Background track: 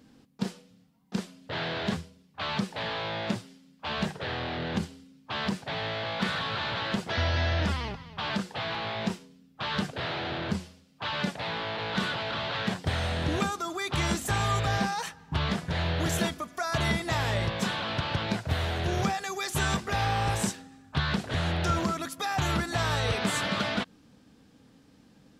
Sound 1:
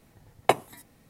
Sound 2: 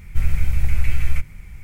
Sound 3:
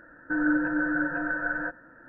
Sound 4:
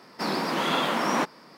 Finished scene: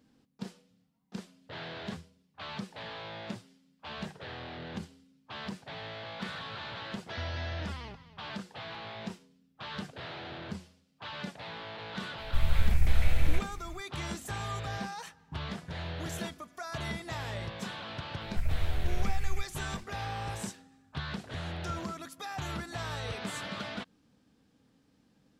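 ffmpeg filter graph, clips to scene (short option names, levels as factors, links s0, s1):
-filter_complex "[2:a]asplit=2[s0][s1];[0:a]volume=0.335[s2];[s0]dynaudnorm=f=210:g=3:m=3.76,atrim=end=1.63,asetpts=PTS-STARTPTS,volume=0.335,afade=t=in:d=0.004:c=hsin,afade=t=out:st=1.626:d=0.004:c=hsin,adelay=12180[s3];[s1]atrim=end=1.63,asetpts=PTS-STARTPTS,volume=0.237,afade=t=in:d=0.004:c=hsin,afade=t=out:st=1.626:d=0.004:c=hsin,adelay=18210[s4];[s2][s3][s4]amix=inputs=3:normalize=0"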